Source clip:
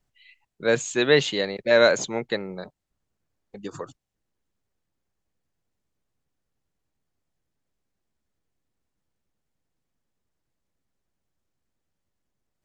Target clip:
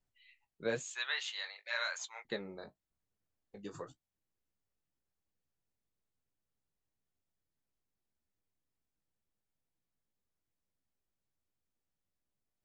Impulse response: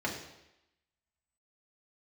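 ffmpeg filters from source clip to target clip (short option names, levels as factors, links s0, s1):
-filter_complex "[0:a]asettb=1/sr,asplit=3[s0][s1][s2];[s0]atrim=end=0.824[s3];[s1]atrim=start=0.82:end=2.25,asetpts=PTS-STARTPTS,afade=t=in:d=0.004:c=qsin,afade=t=out:st=1.426:d=0.004:c=qsin,highpass=f=960:w=0.5412,highpass=f=960:w=1.3066[s4];[s2]atrim=start=2.246[s5];[s3][s4]acrossfade=d=0.004:c1=hsin:c2=qsin[s6];[s6][s5]acrossfade=d=0.004:c1=qsin:c2=hsin,alimiter=limit=0.211:level=0:latency=1:release=354,flanger=delay=9.9:depth=9.3:regen=-32:speed=0.95:shape=sinusoidal,volume=0.473"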